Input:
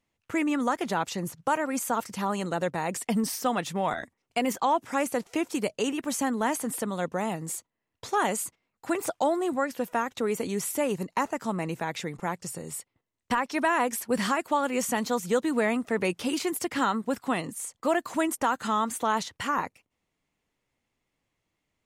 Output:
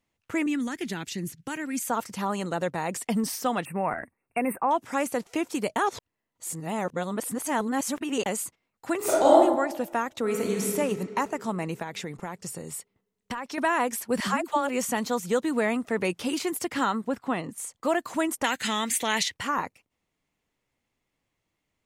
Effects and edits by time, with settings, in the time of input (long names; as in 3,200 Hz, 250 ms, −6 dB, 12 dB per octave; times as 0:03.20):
0:00.46–0:01.87: flat-topped bell 800 Hz −14 dB
0:03.65–0:04.71: linear-phase brick-wall band-stop 2,800–8,000 Hz
0:05.76–0:08.26: reverse
0:08.97–0:09.37: thrown reverb, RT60 1 s, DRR −8 dB
0:10.20–0:10.66: thrown reverb, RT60 2.8 s, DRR 0.5 dB
0:11.82–0:13.58: downward compressor, threshold −29 dBFS
0:14.20–0:14.69: all-pass dispersion lows, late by 84 ms, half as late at 340 Hz
0:17.08–0:17.58: high-shelf EQ 4,100 Hz −11.5 dB
0:18.44–0:19.34: high shelf with overshoot 1,600 Hz +8.5 dB, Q 3